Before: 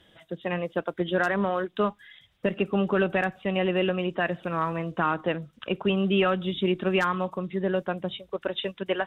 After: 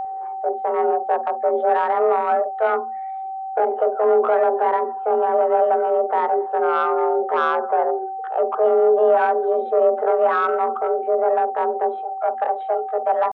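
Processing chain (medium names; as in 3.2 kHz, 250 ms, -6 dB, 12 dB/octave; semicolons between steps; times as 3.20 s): Chebyshev band-pass 150–1100 Hz, order 3; in parallel at +2 dB: peak limiter -25 dBFS, peak gain reduction 11 dB; on the sum: saturation -16.5 dBFS, distortion -17 dB; frequency shift +230 Hz; tempo 0.68×; whistle 770 Hz -29 dBFS; on a send at -14.5 dB: reverberation, pre-delay 47 ms; on the sum: trim +5.5 dB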